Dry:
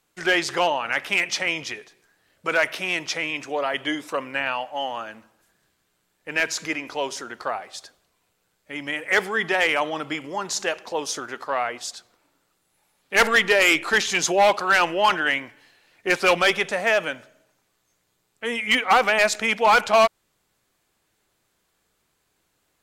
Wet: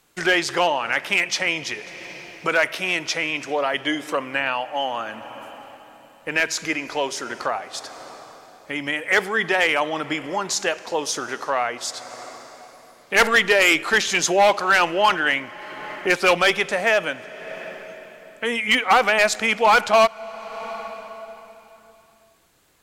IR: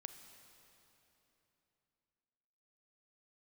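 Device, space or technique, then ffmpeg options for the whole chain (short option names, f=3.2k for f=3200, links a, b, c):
ducked reverb: -filter_complex "[0:a]asplit=3[a][b][c];[1:a]atrim=start_sample=2205[d];[b][d]afir=irnorm=-1:irlink=0[e];[c]apad=whole_len=1006372[f];[e][f]sidechaincompress=threshold=-35dB:ratio=12:attack=16:release=464,volume=10.5dB[g];[a][g]amix=inputs=2:normalize=0"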